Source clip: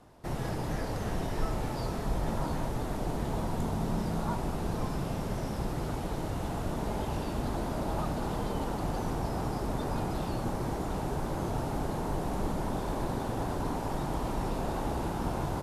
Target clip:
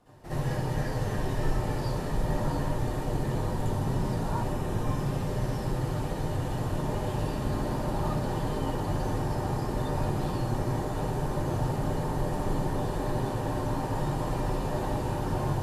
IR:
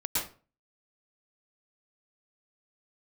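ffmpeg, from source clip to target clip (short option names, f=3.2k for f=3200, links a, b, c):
-filter_complex "[0:a]asettb=1/sr,asplit=3[a][b][c];[a]atrim=end=4.464[d];[b]atrim=start=4.46:end=4.96,asetpts=PTS-STARTPTS,afade=t=in:d=0.004:c=qsin,afade=t=out:st=0.496:d=0.004:c=qsin,bandreject=f=4.5k:w=7.6[e];[c]atrim=start=4.956[f];[d][e]acrossfade=d=0.004:c1=hsin:c2=qsin[g];[g][f]acrossfade=d=0.004:c1=qsin:c2=hsin[h];[1:a]atrim=start_sample=2205,asetrate=83790,aresample=44100[i];[h][i]afir=irnorm=-1:irlink=0"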